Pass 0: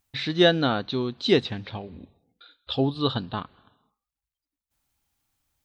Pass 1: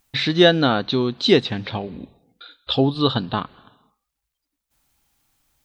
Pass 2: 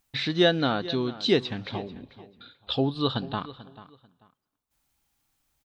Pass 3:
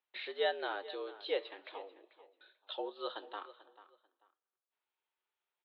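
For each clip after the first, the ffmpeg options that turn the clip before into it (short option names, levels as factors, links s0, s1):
-filter_complex "[0:a]equalizer=f=84:t=o:w=0.31:g=-11.5,asplit=2[s0][s1];[s1]acompressor=threshold=0.0355:ratio=6,volume=1[s2];[s0][s2]amix=inputs=2:normalize=0,volume=1.41"
-filter_complex "[0:a]asplit=2[s0][s1];[s1]adelay=440,lowpass=f=4100:p=1,volume=0.15,asplit=2[s2][s3];[s3]adelay=440,lowpass=f=4100:p=1,volume=0.24[s4];[s0][s2][s4]amix=inputs=3:normalize=0,volume=0.447"
-af "flanger=delay=5.2:depth=8.5:regen=-78:speed=0.38:shape=triangular,highpass=f=330:t=q:w=0.5412,highpass=f=330:t=q:w=1.307,lowpass=f=3500:t=q:w=0.5176,lowpass=f=3500:t=q:w=0.7071,lowpass=f=3500:t=q:w=1.932,afreqshift=86,volume=0.473"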